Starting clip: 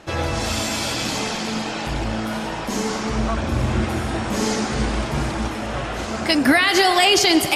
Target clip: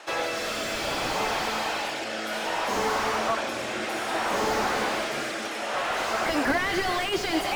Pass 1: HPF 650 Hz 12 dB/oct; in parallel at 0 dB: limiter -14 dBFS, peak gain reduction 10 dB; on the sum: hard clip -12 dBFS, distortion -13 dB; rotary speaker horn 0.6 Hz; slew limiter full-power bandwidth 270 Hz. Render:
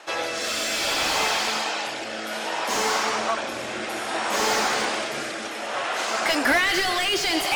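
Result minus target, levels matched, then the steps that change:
slew limiter: distortion -8 dB
change: slew limiter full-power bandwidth 93.5 Hz

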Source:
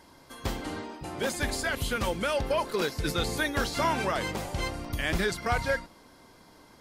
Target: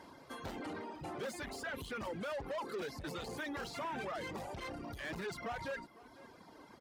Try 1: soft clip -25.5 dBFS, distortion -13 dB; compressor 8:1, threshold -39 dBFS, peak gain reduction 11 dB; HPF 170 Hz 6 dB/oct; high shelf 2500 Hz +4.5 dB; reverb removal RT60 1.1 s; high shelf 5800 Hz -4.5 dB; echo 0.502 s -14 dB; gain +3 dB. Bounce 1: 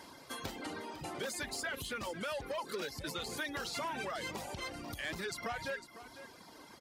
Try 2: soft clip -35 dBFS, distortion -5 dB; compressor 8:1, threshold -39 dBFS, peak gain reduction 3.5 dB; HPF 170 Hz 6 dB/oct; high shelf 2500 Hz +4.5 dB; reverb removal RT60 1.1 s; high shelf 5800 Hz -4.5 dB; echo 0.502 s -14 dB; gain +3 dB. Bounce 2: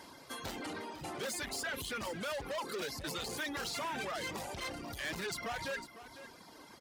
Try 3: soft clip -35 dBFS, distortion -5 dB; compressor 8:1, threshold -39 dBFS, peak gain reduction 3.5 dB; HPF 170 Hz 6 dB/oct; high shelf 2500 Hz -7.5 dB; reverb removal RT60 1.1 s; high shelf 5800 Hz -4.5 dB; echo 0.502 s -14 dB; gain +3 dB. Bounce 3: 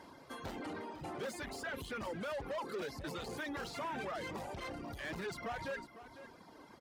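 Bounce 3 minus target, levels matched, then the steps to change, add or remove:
echo-to-direct +6 dB
change: echo 0.502 s -20 dB

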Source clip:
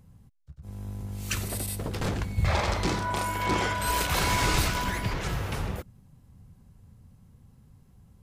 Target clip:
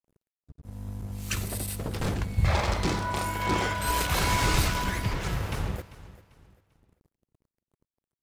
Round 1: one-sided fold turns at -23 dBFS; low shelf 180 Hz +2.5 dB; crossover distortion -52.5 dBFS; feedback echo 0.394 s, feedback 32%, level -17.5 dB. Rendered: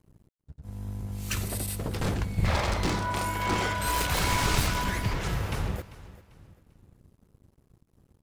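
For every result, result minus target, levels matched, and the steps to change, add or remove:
one-sided fold: distortion +20 dB; crossover distortion: distortion -5 dB
change: one-sided fold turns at -16.5 dBFS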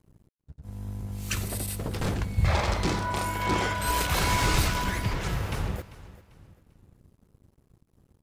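crossover distortion: distortion -6 dB
change: crossover distortion -45.5 dBFS

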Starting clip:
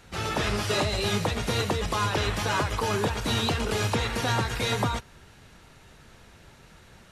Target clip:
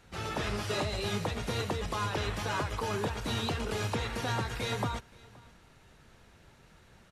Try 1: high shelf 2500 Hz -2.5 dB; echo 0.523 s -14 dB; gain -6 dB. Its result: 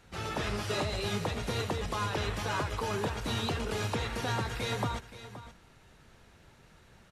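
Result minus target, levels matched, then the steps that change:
echo-to-direct +10 dB
change: echo 0.523 s -24 dB

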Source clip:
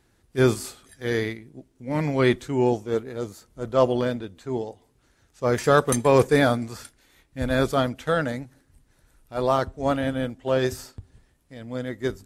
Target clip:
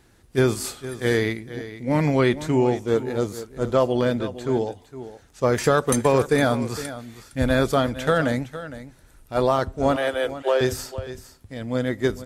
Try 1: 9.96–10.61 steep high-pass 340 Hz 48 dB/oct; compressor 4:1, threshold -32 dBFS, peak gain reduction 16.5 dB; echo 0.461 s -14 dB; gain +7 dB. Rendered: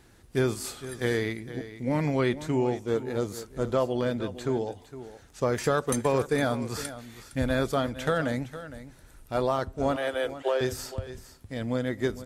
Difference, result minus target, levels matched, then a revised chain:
compressor: peak gain reduction +6.5 dB
9.96–10.61 steep high-pass 340 Hz 48 dB/oct; compressor 4:1, threshold -23.5 dBFS, peak gain reduction 10 dB; echo 0.461 s -14 dB; gain +7 dB

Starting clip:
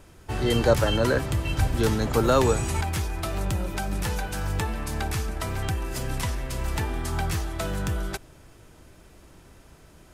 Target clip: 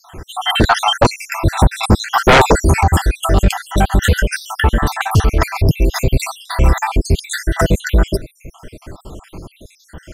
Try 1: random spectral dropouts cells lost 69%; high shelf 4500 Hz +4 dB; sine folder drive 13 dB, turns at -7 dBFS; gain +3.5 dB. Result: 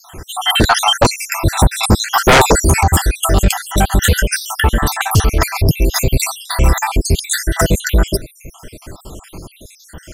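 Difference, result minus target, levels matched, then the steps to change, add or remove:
8000 Hz band +7.0 dB
change: high shelf 4500 Hz -7 dB

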